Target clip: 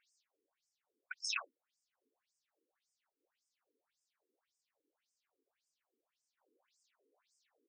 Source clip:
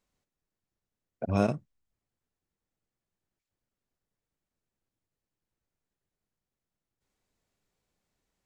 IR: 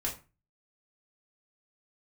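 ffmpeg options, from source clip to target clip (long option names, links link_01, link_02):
-af "atempo=1.1,afftfilt=real='re*between(b*sr/1024,340*pow(6900/340,0.5+0.5*sin(2*PI*1.8*pts/sr))/1.41,340*pow(6900/340,0.5+0.5*sin(2*PI*1.8*pts/sr))*1.41)':imag='im*between(b*sr/1024,340*pow(6900/340,0.5+0.5*sin(2*PI*1.8*pts/sr))/1.41,340*pow(6900/340,0.5+0.5*sin(2*PI*1.8*pts/sr))*1.41)':win_size=1024:overlap=0.75,volume=12dB"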